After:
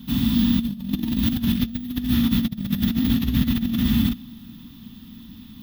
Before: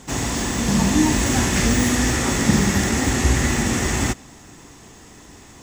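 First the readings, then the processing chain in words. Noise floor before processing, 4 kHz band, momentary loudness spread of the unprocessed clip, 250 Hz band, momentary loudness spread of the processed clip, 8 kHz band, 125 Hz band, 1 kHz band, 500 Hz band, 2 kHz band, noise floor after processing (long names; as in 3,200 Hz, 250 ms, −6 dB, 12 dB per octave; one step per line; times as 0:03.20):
−45 dBFS, −4.5 dB, 5 LU, +0.5 dB, 22 LU, below −20 dB, −3.5 dB, −17.5 dB, −19.5 dB, −15.0 dB, −43 dBFS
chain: drawn EQ curve 130 Hz 0 dB, 240 Hz +13 dB, 350 Hz −17 dB, 660 Hz −20 dB, 1,200 Hz −10 dB, 2,100 Hz −13 dB, 3,500 Hz +5 dB, 8,100 Hz −30 dB, 13,000 Hz +13 dB
compressor whose output falls as the input rises −17 dBFS, ratio −0.5
level −4 dB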